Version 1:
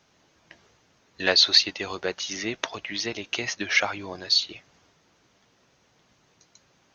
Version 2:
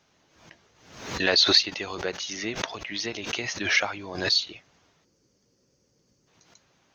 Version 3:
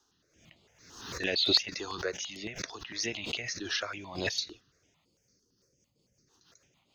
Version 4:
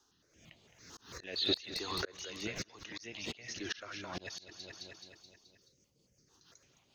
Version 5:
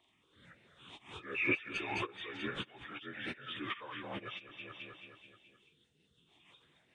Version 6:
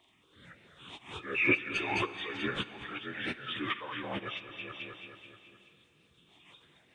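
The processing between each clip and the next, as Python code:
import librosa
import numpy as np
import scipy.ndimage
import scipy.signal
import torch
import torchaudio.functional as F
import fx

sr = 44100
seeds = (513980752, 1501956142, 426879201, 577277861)

y1 = fx.spec_box(x, sr, start_s=5.04, length_s=1.24, low_hz=590.0, high_hz=4300.0, gain_db=-13)
y1 = fx.pre_swell(y1, sr, db_per_s=78.0)
y1 = y1 * librosa.db_to_amplitude(-2.0)
y2 = fx.high_shelf(y1, sr, hz=3700.0, db=8.5)
y2 = fx.rotary_switch(y2, sr, hz=0.9, then_hz=6.7, switch_at_s=5.14)
y2 = fx.phaser_held(y2, sr, hz=8.9, low_hz=600.0, high_hz=5900.0)
y2 = y2 * librosa.db_to_amplitude(-2.0)
y3 = np.minimum(y2, 2.0 * 10.0 ** (-15.5 / 20.0) - y2)
y3 = fx.echo_feedback(y3, sr, ms=214, feedback_pct=54, wet_db=-11.0)
y3 = fx.auto_swell(y3, sr, attack_ms=441.0)
y4 = fx.partial_stretch(y3, sr, pct=82)
y4 = y4 * librosa.db_to_amplitude(2.0)
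y5 = fx.rev_plate(y4, sr, seeds[0], rt60_s=4.2, hf_ratio=1.0, predelay_ms=0, drr_db=14.5)
y5 = y5 * librosa.db_to_amplitude(5.5)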